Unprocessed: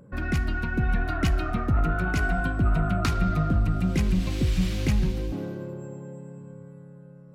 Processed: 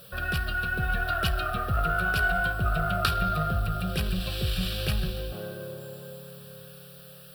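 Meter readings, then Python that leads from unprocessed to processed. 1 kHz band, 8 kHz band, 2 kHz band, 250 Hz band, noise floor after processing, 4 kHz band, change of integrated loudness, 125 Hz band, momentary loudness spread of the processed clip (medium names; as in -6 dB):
+3.5 dB, 0.0 dB, +4.5 dB, -8.0 dB, -48 dBFS, +6.5 dB, -2.0 dB, -5.0 dB, 19 LU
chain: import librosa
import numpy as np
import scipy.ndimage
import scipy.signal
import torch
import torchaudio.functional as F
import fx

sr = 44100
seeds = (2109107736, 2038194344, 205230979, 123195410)

y = fx.tilt_eq(x, sr, slope=2.0)
y = fx.dmg_noise_colour(y, sr, seeds[0], colour='white', level_db=-52.0)
y = fx.fixed_phaser(y, sr, hz=1400.0, stages=8)
y = fx.cheby_harmonics(y, sr, harmonics=(2,), levels_db=(-15,), full_scale_db=-14.0)
y = y * 10.0 ** (4.0 / 20.0)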